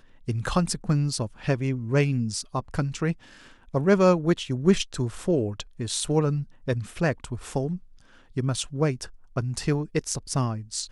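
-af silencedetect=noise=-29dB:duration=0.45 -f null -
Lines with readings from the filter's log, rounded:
silence_start: 3.12
silence_end: 3.74 | silence_duration: 0.62
silence_start: 7.76
silence_end: 8.37 | silence_duration: 0.61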